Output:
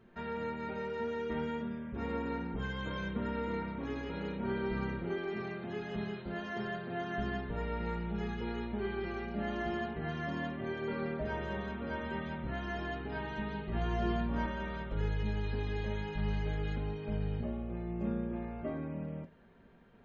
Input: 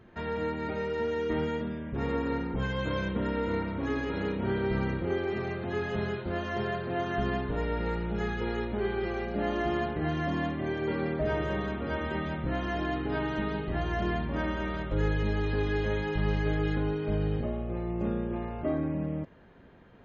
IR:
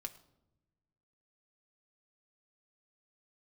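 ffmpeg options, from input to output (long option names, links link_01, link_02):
-filter_complex "[0:a]asettb=1/sr,asplit=3[link_01][link_02][link_03];[link_01]atrim=end=13.714[link_04];[link_02]atrim=start=13.71:end=14.46,asetpts=PTS-STARTPTS,afade=type=in:duration=0.004:curve=qsin,afade=type=out:start_time=0.746:duration=0.004:curve=qsin,asplit=2[link_05][link_06];[link_06]adelay=17,volume=-2.5dB[link_07];[link_05][link_07]amix=inputs=2:normalize=0,atrim=end_sample=33075[link_08];[link_03]atrim=start=14.456[link_09];[link_04][link_08]acrossfade=duration=0.004:curve1=hsin:curve2=qsin[link_10];[link_10][link_09]acrossfade=duration=0.004:curve1=qsin:curve2=hsin[link_11];[1:a]atrim=start_sample=2205,atrim=end_sample=3087[link_12];[link_11][link_12]afir=irnorm=-1:irlink=0,volume=-3dB"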